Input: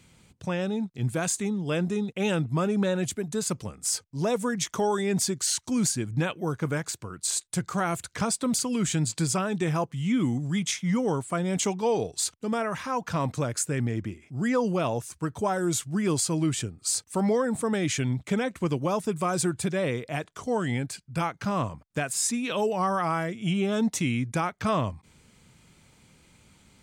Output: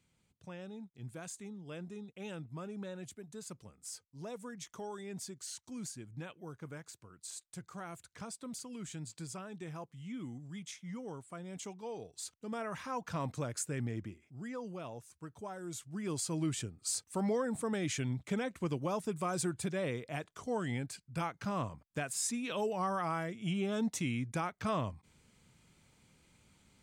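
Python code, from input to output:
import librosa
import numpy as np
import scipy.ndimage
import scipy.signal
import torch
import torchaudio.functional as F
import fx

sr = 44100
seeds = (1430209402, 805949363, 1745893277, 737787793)

y = fx.gain(x, sr, db=fx.line((12.05, -18.0), (12.74, -9.5), (13.99, -9.5), (14.49, -17.5), (15.63, -17.5), (16.4, -8.5)))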